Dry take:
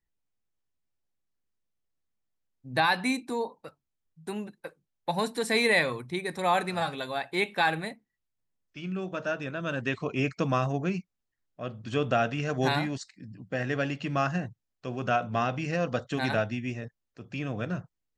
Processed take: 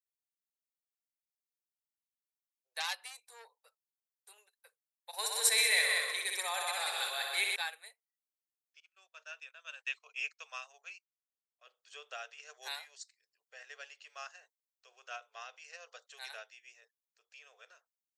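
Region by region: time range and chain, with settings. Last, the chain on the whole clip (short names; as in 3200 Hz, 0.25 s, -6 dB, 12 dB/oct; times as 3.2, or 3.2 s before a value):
2.8–4.38 HPF 56 Hz 24 dB/oct + bell 640 Hz +3.5 dB 1.3 oct + core saturation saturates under 2300 Hz
5.13–7.56 multi-head echo 63 ms, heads all three, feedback 40%, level -7 dB + fast leveller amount 70%
8.8–11.67 HPF 620 Hz + gate -45 dBFS, range -20 dB + dynamic EQ 2600 Hz, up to +7 dB, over -48 dBFS, Q 3.1
whole clip: elliptic high-pass 430 Hz, stop band 40 dB; differentiator; upward expander 1.5:1, over -49 dBFS; gain +5 dB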